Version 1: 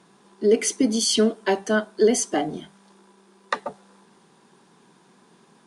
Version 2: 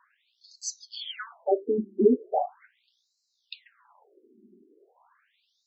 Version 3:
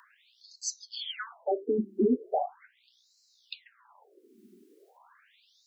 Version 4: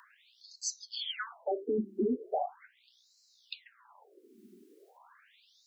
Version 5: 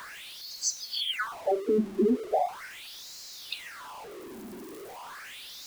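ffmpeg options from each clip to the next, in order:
ffmpeg -i in.wav -af "aemphasis=mode=reproduction:type=bsi,afftfilt=real='re*between(b*sr/1024,280*pow(5600/280,0.5+0.5*sin(2*PI*0.39*pts/sr))/1.41,280*pow(5600/280,0.5+0.5*sin(2*PI*0.39*pts/sr))*1.41)':imag='im*between(b*sr/1024,280*pow(5600/280,0.5+0.5*sin(2*PI*0.39*pts/sr))/1.41,280*pow(5600/280,0.5+0.5*sin(2*PI*0.39*pts/sr))*1.41)':win_size=1024:overlap=0.75" out.wav
ffmpeg -i in.wav -filter_complex "[0:a]acrossover=split=220|1300[link_01][link_02][link_03];[link_02]alimiter=limit=-20.5dB:level=0:latency=1:release=102[link_04];[link_03]acompressor=mode=upward:threshold=-56dB:ratio=2.5[link_05];[link_01][link_04][link_05]amix=inputs=3:normalize=0" out.wav
ffmpeg -i in.wav -af "alimiter=limit=-23.5dB:level=0:latency=1:release=66" out.wav
ffmpeg -i in.wav -af "aeval=exprs='val(0)+0.5*0.00562*sgn(val(0))':channel_layout=same,volume=5.5dB" out.wav

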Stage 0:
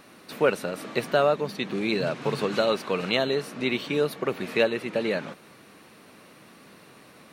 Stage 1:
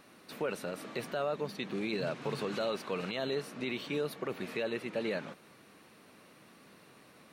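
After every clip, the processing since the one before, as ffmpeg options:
ffmpeg -i in.wav -af "alimiter=limit=-17.5dB:level=0:latency=1:release=18,volume=-7dB" out.wav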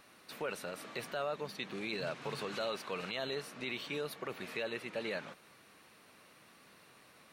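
ffmpeg -i in.wav -af "equalizer=frequency=240:width_type=o:width=2.6:gain=-7.5" out.wav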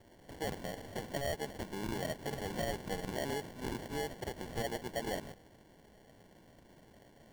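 ffmpeg -i in.wav -af "acrusher=samples=35:mix=1:aa=0.000001,volume=1dB" out.wav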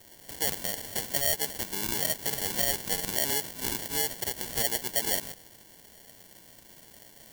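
ffmpeg -i in.wav -af "crystalizer=i=8.5:c=0" out.wav

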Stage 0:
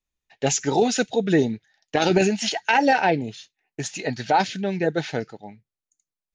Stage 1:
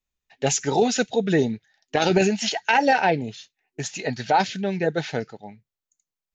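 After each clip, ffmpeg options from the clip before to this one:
ffmpeg -i in.wav -af "superequalizer=6b=0.708:16b=0.251" out.wav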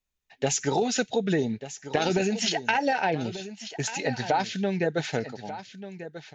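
ffmpeg -i in.wav -af "acompressor=threshold=-21dB:ratio=6,aecho=1:1:1190:0.224" out.wav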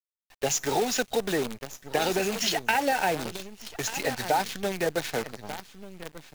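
ffmpeg -i in.wav -filter_complex "[0:a]acrossover=split=300[link_01][link_02];[link_01]asoftclip=type=tanh:threshold=-36.5dB[link_03];[link_03][link_02]amix=inputs=2:normalize=0,acrusher=bits=6:dc=4:mix=0:aa=0.000001" out.wav

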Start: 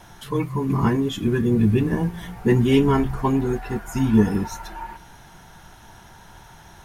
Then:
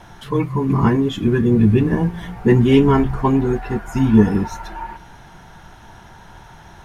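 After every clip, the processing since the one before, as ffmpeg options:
ffmpeg -i in.wav -af "lowpass=frequency=3300:poles=1,volume=4.5dB" out.wav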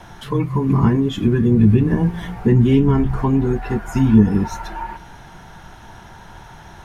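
ffmpeg -i in.wav -filter_complex "[0:a]acrossover=split=270[link_01][link_02];[link_02]acompressor=threshold=-24dB:ratio=5[link_03];[link_01][link_03]amix=inputs=2:normalize=0,volume=2dB" out.wav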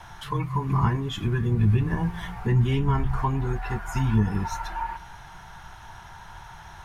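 ffmpeg -i in.wav -af "equalizer=frequency=250:width_type=o:width=1:gain=-12,equalizer=frequency=500:width_type=o:width=1:gain=-7,equalizer=frequency=1000:width_type=o:width=1:gain=4,volume=-3dB" out.wav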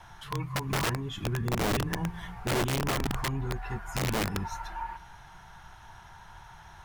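ffmpeg -i in.wav -af "aeval=exprs='(mod(7.08*val(0)+1,2)-1)/7.08':channel_layout=same,volume=-6dB" out.wav

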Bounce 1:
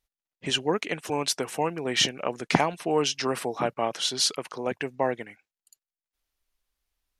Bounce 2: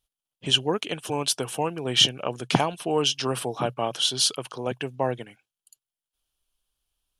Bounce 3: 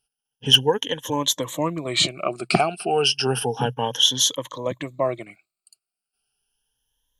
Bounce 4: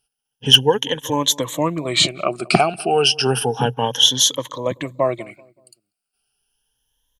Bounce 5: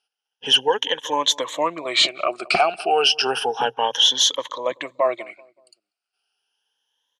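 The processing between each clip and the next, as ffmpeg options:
ffmpeg -i in.wav -af "equalizer=frequency=125:width_type=o:width=0.33:gain=9,equalizer=frequency=2000:width_type=o:width=0.33:gain=-10,equalizer=frequency=3150:width_type=o:width=0.33:gain=9,equalizer=frequency=10000:width_type=o:width=0.33:gain=8" out.wav
ffmpeg -i in.wav -af "afftfilt=real='re*pow(10,18/40*sin(2*PI*(1.1*log(max(b,1)*sr/1024/100)/log(2)-(0.32)*(pts-256)/sr)))':imag='im*pow(10,18/40*sin(2*PI*(1.1*log(max(b,1)*sr/1024/100)/log(2)-(0.32)*(pts-256)/sr)))':win_size=1024:overlap=0.75,asoftclip=type=hard:threshold=-5.5dB" out.wav
ffmpeg -i in.wav -filter_complex "[0:a]asplit=2[link_01][link_02];[link_02]adelay=190,lowpass=frequency=890:poles=1,volume=-21dB,asplit=2[link_03][link_04];[link_04]adelay=190,lowpass=frequency=890:poles=1,volume=0.45,asplit=2[link_05][link_06];[link_06]adelay=190,lowpass=frequency=890:poles=1,volume=0.45[link_07];[link_01][link_03][link_05][link_07]amix=inputs=4:normalize=0,volume=4dB" out.wav
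ffmpeg -i in.wav -af "highpass=570,lowpass=5000,apsyclip=11dB,volume=-9dB" out.wav

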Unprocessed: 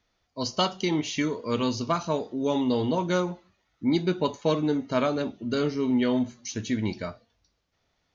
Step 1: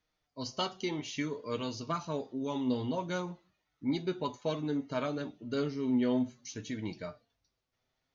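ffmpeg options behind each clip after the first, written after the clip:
ffmpeg -i in.wav -af "flanger=delay=6.4:depth=1.6:regen=42:speed=0.58:shape=sinusoidal,volume=-4.5dB" out.wav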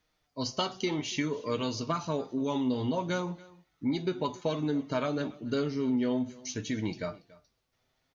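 ffmpeg -i in.wav -af "acompressor=threshold=-32dB:ratio=4,aecho=1:1:283:0.0841,volume=6dB" out.wav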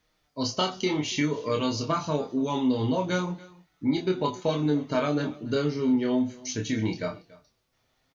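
ffmpeg -i in.wav -filter_complex "[0:a]asplit=2[link_01][link_02];[link_02]adelay=27,volume=-4dB[link_03];[link_01][link_03]amix=inputs=2:normalize=0,volume=3dB" out.wav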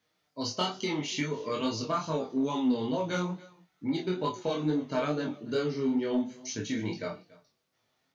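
ffmpeg -i in.wav -filter_complex "[0:a]highpass=130,flanger=delay=18:depth=4.6:speed=2.3,asplit=2[link_01][link_02];[link_02]asoftclip=type=hard:threshold=-24.5dB,volume=-9dB[link_03];[link_01][link_03]amix=inputs=2:normalize=0,volume=-3dB" out.wav

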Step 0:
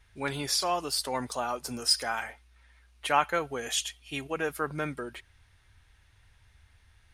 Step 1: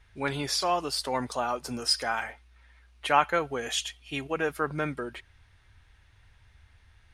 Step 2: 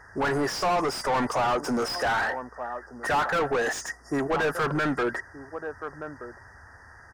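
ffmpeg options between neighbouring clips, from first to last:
ffmpeg -i in.wav -af "highshelf=frequency=7400:gain=-10.5,volume=2.5dB" out.wav
ffmpeg -i in.wav -filter_complex "[0:a]afftfilt=real='re*(1-between(b*sr/4096,2000,4700))':imag='im*(1-between(b*sr/4096,2000,4700))':win_size=4096:overlap=0.75,asplit=2[link_01][link_02];[link_02]adelay=1224,volume=-21dB,highshelf=frequency=4000:gain=-27.6[link_03];[link_01][link_03]amix=inputs=2:normalize=0,asplit=2[link_04][link_05];[link_05]highpass=frequency=720:poles=1,volume=36dB,asoftclip=type=tanh:threshold=-8dB[link_06];[link_04][link_06]amix=inputs=2:normalize=0,lowpass=frequency=1500:poles=1,volume=-6dB,volume=-7.5dB" out.wav

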